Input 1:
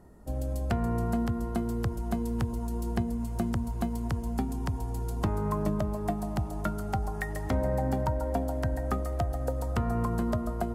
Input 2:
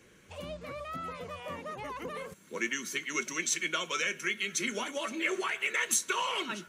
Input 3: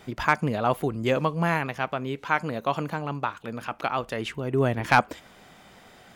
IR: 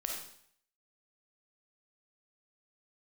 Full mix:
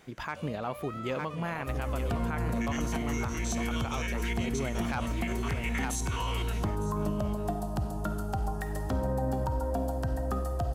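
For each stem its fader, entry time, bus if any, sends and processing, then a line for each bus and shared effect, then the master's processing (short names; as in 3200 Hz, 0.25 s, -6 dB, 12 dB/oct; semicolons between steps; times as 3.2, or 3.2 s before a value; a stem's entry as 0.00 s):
-4.0 dB, 1.40 s, send -4 dB, no echo send, bell 2100 Hz -14.5 dB 0.24 oct
-4.5 dB, 0.00 s, send -12.5 dB, echo send -15.5 dB, stepped spectrum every 50 ms
-8.0 dB, 0.00 s, no send, echo send -10 dB, dry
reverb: on, RT60 0.60 s, pre-delay 10 ms
echo: echo 0.907 s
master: limiter -22 dBFS, peak gain reduction 10 dB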